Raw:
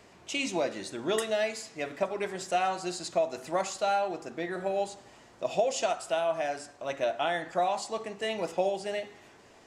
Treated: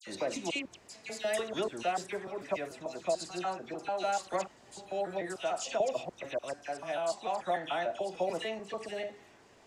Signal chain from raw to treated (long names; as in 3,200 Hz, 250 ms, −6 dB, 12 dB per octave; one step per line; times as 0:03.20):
slices reordered back to front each 147 ms, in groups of 6
all-pass dispersion lows, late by 69 ms, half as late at 2,200 Hz
level −4 dB